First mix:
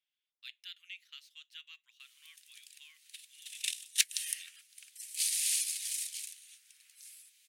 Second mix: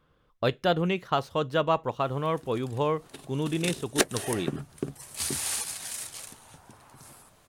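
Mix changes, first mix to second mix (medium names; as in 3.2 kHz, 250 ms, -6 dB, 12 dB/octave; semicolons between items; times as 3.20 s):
speech +11.0 dB; master: remove steep high-pass 2.2 kHz 36 dB/octave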